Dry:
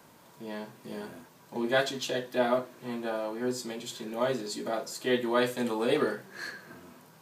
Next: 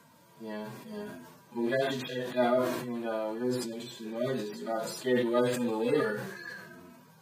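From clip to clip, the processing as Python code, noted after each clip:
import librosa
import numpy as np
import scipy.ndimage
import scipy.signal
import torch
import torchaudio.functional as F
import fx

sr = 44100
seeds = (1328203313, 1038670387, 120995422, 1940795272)

y = fx.hpss_only(x, sr, part='harmonic')
y = fx.sustainer(y, sr, db_per_s=48.0)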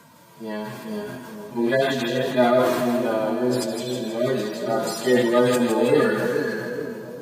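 y = fx.echo_split(x, sr, split_hz=690.0, low_ms=426, high_ms=161, feedback_pct=52, wet_db=-6)
y = F.gain(torch.from_numpy(y), 8.5).numpy()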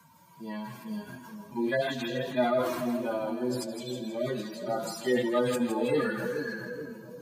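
y = fx.bin_expand(x, sr, power=1.5)
y = fx.notch(y, sr, hz=420.0, q=12.0)
y = fx.band_squash(y, sr, depth_pct=40)
y = F.gain(torch.from_numpy(y), -5.0).numpy()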